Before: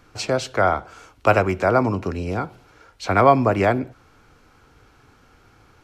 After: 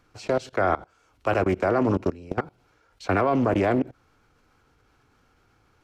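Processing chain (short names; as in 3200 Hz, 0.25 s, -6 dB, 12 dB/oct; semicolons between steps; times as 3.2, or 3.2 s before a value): dynamic EQ 320 Hz, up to +6 dB, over -32 dBFS, Q 1.1; level quantiser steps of 21 dB; Doppler distortion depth 0.37 ms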